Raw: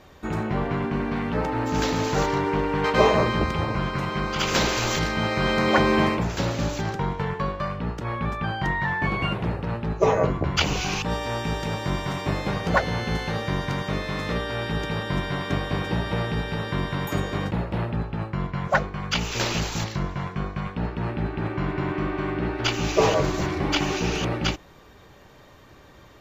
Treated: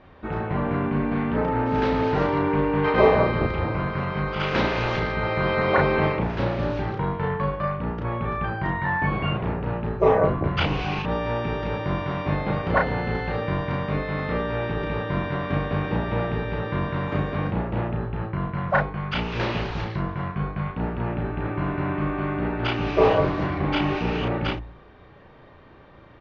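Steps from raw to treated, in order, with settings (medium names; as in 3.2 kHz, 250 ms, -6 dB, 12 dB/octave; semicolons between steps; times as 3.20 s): Gaussian low-pass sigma 2.7 samples; doubling 34 ms -3 dB; de-hum 57.39 Hz, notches 16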